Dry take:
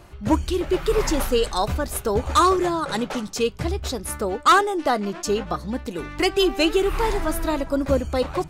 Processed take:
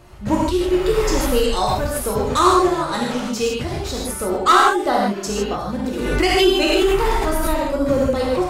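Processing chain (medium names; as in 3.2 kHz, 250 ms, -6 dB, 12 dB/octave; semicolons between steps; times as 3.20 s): gated-style reverb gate 180 ms flat, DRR -3.5 dB; 5.75–7.65 s: swell ahead of each attack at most 33 dB/s; trim -1.5 dB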